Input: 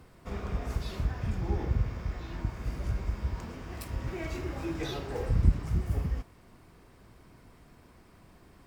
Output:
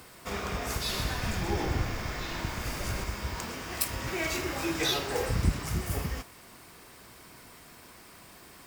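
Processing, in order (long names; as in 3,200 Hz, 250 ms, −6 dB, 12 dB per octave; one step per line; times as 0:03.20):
spectral tilt +3 dB per octave
0:00.76–0:03.04: echo with shifted repeats 128 ms, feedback 58%, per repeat −31 Hz, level −6 dB
level +7.5 dB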